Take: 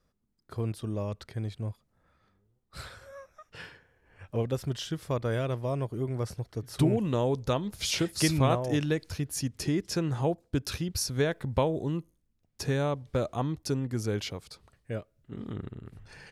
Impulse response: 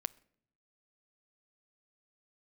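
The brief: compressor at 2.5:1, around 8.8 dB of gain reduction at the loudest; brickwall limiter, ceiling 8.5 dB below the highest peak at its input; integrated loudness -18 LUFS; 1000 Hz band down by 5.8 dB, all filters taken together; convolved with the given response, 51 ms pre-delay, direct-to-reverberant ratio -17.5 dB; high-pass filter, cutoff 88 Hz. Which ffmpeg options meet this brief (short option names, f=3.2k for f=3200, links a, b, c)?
-filter_complex "[0:a]highpass=88,equalizer=f=1k:t=o:g=-8,acompressor=threshold=-34dB:ratio=2.5,alimiter=level_in=3.5dB:limit=-24dB:level=0:latency=1,volume=-3.5dB,asplit=2[a][b];[1:a]atrim=start_sample=2205,adelay=51[c];[b][c]afir=irnorm=-1:irlink=0,volume=18.5dB[d];[a][d]amix=inputs=2:normalize=0,volume=3dB"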